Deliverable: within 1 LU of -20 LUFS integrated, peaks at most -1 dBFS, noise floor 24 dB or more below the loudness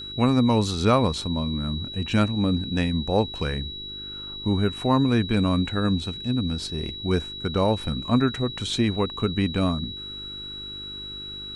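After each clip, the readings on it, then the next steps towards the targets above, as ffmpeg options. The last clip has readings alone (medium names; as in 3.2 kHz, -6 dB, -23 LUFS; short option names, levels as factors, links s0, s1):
hum 50 Hz; highest harmonic 400 Hz; hum level -45 dBFS; steady tone 3.9 kHz; tone level -34 dBFS; loudness -25.0 LUFS; peak level -7.0 dBFS; loudness target -20.0 LUFS
-> -af "bandreject=f=50:t=h:w=4,bandreject=f=100:t=h:w=4,bandreject=f=150:t=h:w=4,bandreject=f=200:t=h:w=4,bandreject=f=250:t=h:w=4,bandreject=f=300:t=h:w=4,bandreject=f=350:t=h:w=4,bandreject=f=400:t=h:w=4"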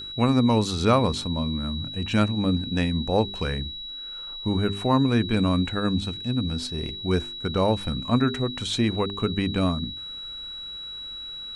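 hum not found; steady tone 3.9 kHz; tone level -34 dBFS
-> -af "bandreject=f=3900:w=30"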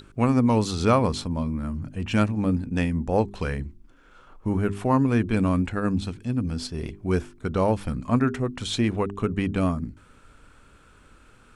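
steady tone not found; loudness -25.0 LUFS; peak level -7.0 dBFS; loudness target -20.0 LUFS
-> -af "volume=1.78"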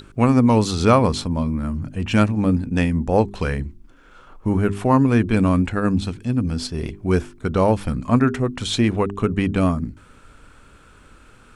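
loudness -20.0 LUFS; peak level -2.0 dBFS; noise floor -50 dBFS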